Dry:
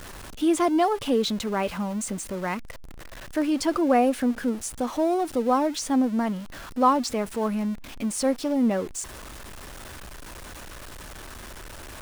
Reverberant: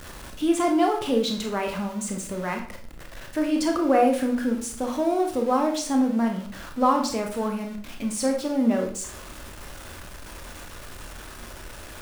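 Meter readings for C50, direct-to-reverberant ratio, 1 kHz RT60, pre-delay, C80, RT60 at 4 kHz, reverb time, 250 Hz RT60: 7.5 dB, 2.0 dB, 0.50 s, 22 ms, 11.5 dB, 0.40 s, 0.50 s, 0.60 s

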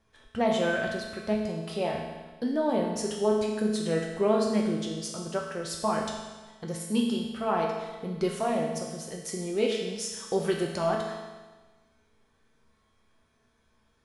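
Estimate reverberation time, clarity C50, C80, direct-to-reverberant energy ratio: 1.3 s, 2.5 dB, 4.5 dB, −1.5 dB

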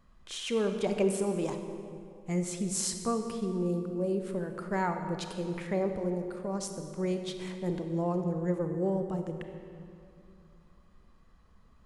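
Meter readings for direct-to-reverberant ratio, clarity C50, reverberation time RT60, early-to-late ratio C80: 6.0 dB, 6.5 dB, 2.4 s, 8.0 dB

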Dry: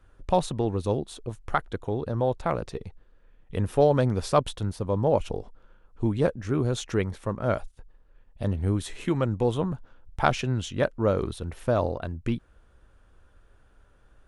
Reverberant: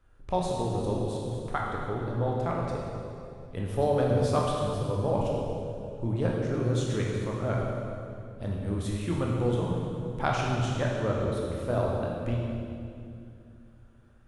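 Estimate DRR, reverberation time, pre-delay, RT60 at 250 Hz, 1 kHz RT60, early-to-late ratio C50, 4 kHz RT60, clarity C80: −2.5 dB, 2.6 s, 16 ms, 3.3 s, 2.3 s, −0.5 dB, 2.1 s, 1.5 dB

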